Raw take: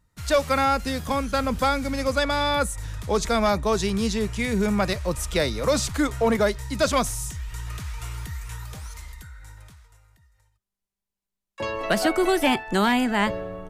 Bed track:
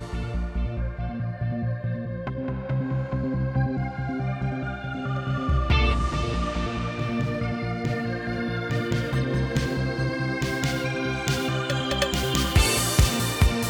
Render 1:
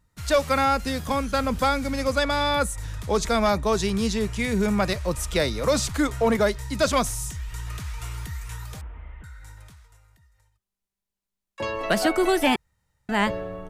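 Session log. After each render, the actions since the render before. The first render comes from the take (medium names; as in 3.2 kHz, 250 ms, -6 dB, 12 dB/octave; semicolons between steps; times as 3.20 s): 8.81–9.24 s: one-bit delta coder 16 kbps, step -56 dBFS; 12.56–13.09 s: room tone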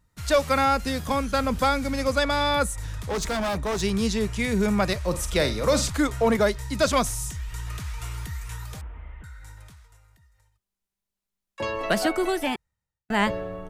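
2.71–3.81 s: hard clipper -24 dBFS; 5.07–5.90 s: flutter echo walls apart 8.1 m, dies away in 0.27 s; 11.81–13.10 s: fade out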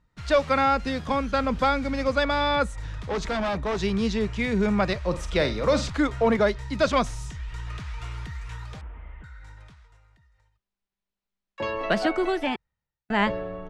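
low-pass 4 kHz 12 dB/octave; peaking EQ 86 Hz -5 dB 0.6 oct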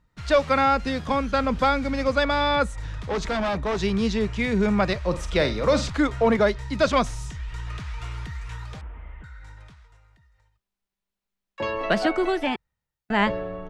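trim +1.5 dB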